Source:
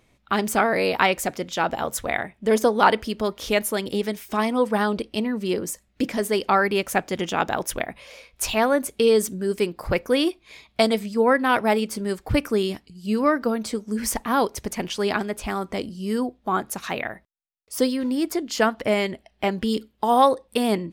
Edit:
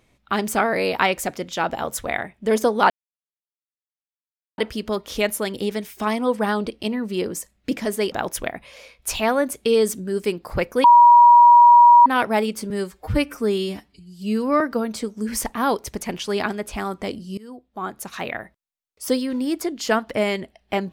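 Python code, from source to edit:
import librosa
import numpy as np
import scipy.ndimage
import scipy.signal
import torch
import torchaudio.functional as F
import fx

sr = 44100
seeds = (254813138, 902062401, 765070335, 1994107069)

y = fx.edit(x, sr, fx.insert_silence(at_s=2.9, length_s=1.68),
    fx.cut(start_s=6.44, length_s=1.02),
    fx.bleep(start_s=10.18, length_s=1.22, hz=958.0, db=-6.5),
    fx.stretch_span(start_s=12.04, length_s=1.27, factor=1.5),
    fx.fade_in_from(start_s=16.08, length_s=0.98, floor_db=-23.0), tone=tone)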